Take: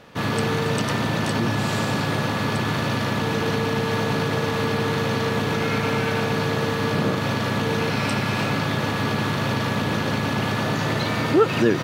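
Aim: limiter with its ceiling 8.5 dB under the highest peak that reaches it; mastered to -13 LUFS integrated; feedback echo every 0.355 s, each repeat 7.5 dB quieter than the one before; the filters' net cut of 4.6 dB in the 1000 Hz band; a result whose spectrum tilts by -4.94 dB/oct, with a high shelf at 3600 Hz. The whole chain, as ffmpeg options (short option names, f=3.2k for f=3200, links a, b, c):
-af "equalizer=f=1k:t=o:g=-5.5,highshelf=f=3.6k:g=-4.5,alimiter=limit=-16.5dB:level=0:latency=1,aecho=1:1:355|710|1065|1420|1775:0.422|0.177|0.0744|0.0312|0.0131,volume=12dB"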